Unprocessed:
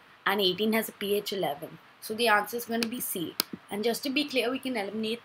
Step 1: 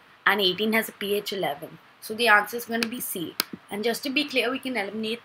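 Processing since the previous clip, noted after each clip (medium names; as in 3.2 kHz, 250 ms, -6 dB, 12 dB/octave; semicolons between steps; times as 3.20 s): dynamic bell 1.8 kHz, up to +7 dB, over -42 dBFS, Q 1.1; trim +1.5 dB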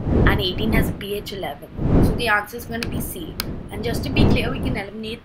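wind noise 230 Hz -21 dBFS; trim -1 dB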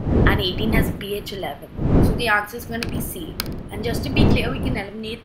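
feedback delay 62 ms, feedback 36%, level -17.5 dB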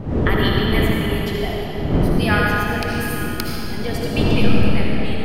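reverberation RT60 3.8 s, pre-delay 35 ms, DRR -3.5 dB; trim -3 dB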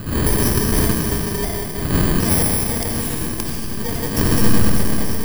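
bit-reversed sample order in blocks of 32 samples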